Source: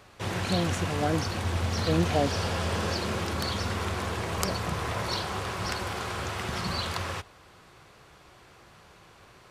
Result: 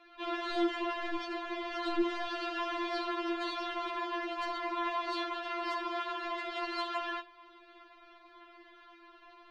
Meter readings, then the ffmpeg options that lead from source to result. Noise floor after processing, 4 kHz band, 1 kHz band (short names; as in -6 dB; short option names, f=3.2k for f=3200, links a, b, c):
-58 dBFS, -7.0 dB, -2.0 dB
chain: -af "lowpass=f=3.6k:w=0.5412,lowpass=f=3.6k:w=1.3066,asoftclip=type=tanh:threshold=-24dB,bandreject=f=50:t=h:w=6,bandreject=f=100:t=h:w=6,bandreject=f=150:t=h:w=6,bandreject=f=200:t=h:w=6,bandreject=f=250:t=h:w=6,bandreject=f=300:t=h:w=6,bandreject=f=350:t=h:w=6,afftfilt=real='re*4*eq(mod(b,16),0)':imag='im*4*eq(mod(b,16),0)':win_size=2048:overlap=0.75,volume=1dB"